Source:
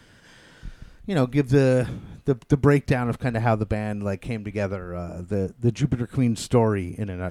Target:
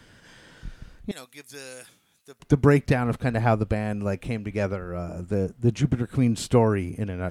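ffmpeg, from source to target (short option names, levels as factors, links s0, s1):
-filter_complex "[0:a]asettb=1/sr,asplit=3[s0][s1][s2];[s0]atrim=end=1.114[s3];[s1]atrim=start=1.11:end=2.4,asetpts=PTS-STARTPTS,afade=t=in:d=0.004:c=qsin,afade=t=out:st=1.286:d=0.004:c=qsin,aderivative[s4];[s2]atrim=start=2.396[s5];[s3][s4]acrossfade=d=0.004:c1=hsin:c2=qsin[s6];[s6][s5]acrossfade=d=0.004:c1=qsin:c2=hsin"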